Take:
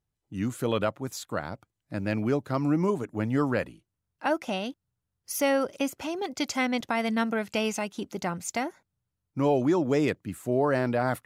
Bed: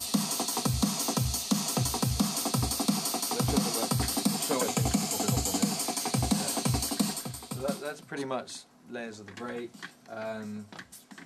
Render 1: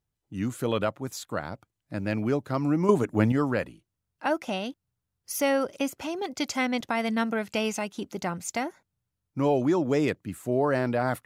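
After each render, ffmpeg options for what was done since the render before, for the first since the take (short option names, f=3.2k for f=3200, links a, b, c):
-filter_complex "[0:a]asplit=3[a][b][c];[a]atrim=end=2.892[d];[b]atrim=start=2.888:end=3.322,asetpts=PTS-STARTPTS,volume=7dB[e];[c]atrim=start=3.318[f];[d][e]acrossfade=d=0.004:c1=hsin:c2=hsin[g];[g][f]acrossfade=d=0.004:c1=hsin:c2=hsin"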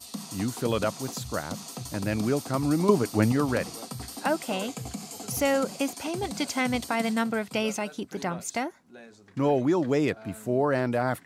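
-filter_complex "[1:a]volume=-9.5dB[a];[0:a][a]amix=inputs=2:normalize=0"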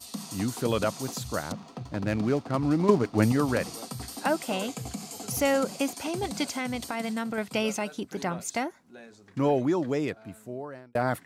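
-filter_complex "[0:a]asettb=1/sr,asplit=3[a][b][c];[a]atrim=end=1.524[d];[b]atrim=start=1.52:end=3.18,asetpts=PTS-STARTPTS,afade=t=in:d=0.004:c=qsin,afade=t=out:st=1.656:d=0.004:c=qsin,adynamicsmooth=sensitivity=6.5:basefreq=1.5k[e];[c]atrim=start=3.176[f];[d][e]acrossfade=d=0.004:c1=hsin:c2=qsin[g];[g][f]acrossfade=d=0.004:c1=qsin:c2=hsin,asettb=1/sr,asplit=3[h][i][j];[h]atrim=end=6.494[k];[i]atrim=start=6.49:end=7.38,asetpts=PTS-STARTPTS,afade=t=in:d=0.004:c=qsin,afade=t=out:st=0.886:d=0.004:c=qsin,acompressor=threshold=-31dB:ratio=2:attack=3.2:release=140:knee=1:detection=peak[l];[j]atrim=start=7.376[m];[k][l]acrossfade=d=0.004:c1=hsin:c2=qsin[n];[n][m]acrossfade=d=0.004:c1=qsin:c2=hsin,asplit=2[o][p];[o]atrim=end=10.95,asetpts=PTS-STARTPTS,afade=t=out:st=9.43:d=1.52[q];[p]atrim=start=10.95,asetpts=PTS-STARTPTS,afade=t=in:d=0.004:c=hsin[r];[q][r]concat=n=2:v=0:a=1"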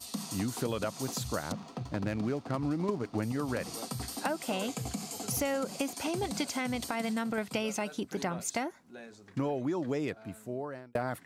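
-af "acompressor=threshold=-28dB:ratio=12"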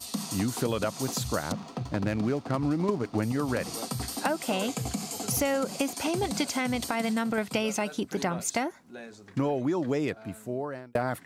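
-af "volume=4.5dB"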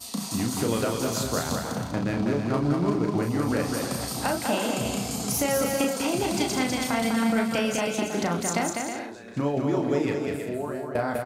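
-filter_complex "[0:a]asplit=2[a][b];[b]adelay=35,volume=-5dB[c];[a][c]amix=inputs=2:normalize=0,aecho=1:1:200|320|392|435.2|461.1:0.631|0.398|0.251|0.158|0.1"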